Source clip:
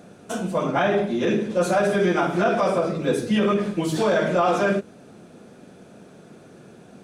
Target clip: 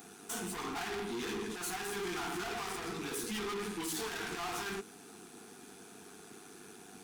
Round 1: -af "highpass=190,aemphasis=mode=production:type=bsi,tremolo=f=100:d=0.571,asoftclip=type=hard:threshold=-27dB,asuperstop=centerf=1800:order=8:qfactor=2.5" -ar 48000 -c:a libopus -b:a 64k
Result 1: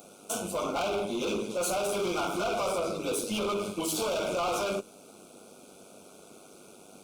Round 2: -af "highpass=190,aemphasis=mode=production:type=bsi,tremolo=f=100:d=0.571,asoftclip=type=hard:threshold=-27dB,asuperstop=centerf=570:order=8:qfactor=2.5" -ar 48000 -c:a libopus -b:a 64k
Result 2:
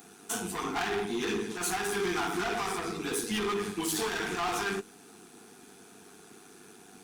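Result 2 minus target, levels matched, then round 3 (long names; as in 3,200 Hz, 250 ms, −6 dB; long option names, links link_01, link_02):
hard clipping: distortion −4 dB
-af "highpass=190,aemphasis=mode=production:type=bsi,tremolo=f=100:d=0.571,asoftclip=type=hard:threshold=-36dB,asuperstop=centerf=570:order=8:qfactor=2.5" -ar 48000 -c:a libopus -b:a 64k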